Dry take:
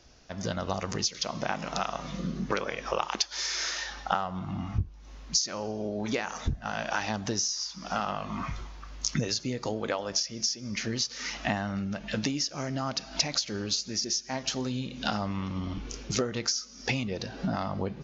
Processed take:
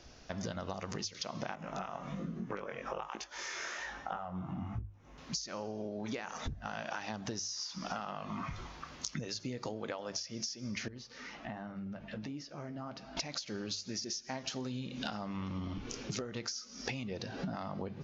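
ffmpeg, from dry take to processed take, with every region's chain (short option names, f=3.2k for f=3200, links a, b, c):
-filter_complex "[0:a]asettb=1/sr,asplit=3[a][b][c];[a]atrim=end=1.554[d];[b]atrim=start=1.55:end=5.18,asetpts=PTS-STARTPTS,afade=t=in:d=0.004:c=qsin,afade=t=out:st=3.626:d=0.004:c=qsin,equalizer=f=4.5k:w=1.2:g=-13.5,flanger=delay=17.5:depth=5:speed=1.2[e];[c]atrim=start=5.176[f];[d][e]acrossfade=d=0.004:c1=hsin:c2=qsin[g];[g][f]acrossfade=d=0.004:c1=qsin:c2=hsin,asettb=1/sr,asplit=3[h][i][j];[h]atrim=end=10.884[k];[i]atrim=start=10.88:end=13.17,asetpts=PTS-STARTPTS,afade=t=in:d=0.004:c=qsin,afade=t=out:st=2.286:d=0.004:c=qsin,lowpass=f=1.4k:p=1,acompressor=threshold=-43dB:ratio=2:attack=3.2:release=140:knee=1:detection=peak,flanger=delay=6.3:depth=6.2:regen=-57:speed=1.3:shape=triangular[l];[j]atrim=start=13.166[m];[k][l]acrossfade=d=0.004:c1=hsin:c2=qsin[n];[n][m]acrossfade=d=0.004:c1=qsin:c2=hsin,highshelf=f=6.8k:g=-6,bandreject=f=50:t=h:w=6,bandreject=f=100:t=h:w=6,acompressor=threshold=-39dB:ratio=6,volume=2.5dB"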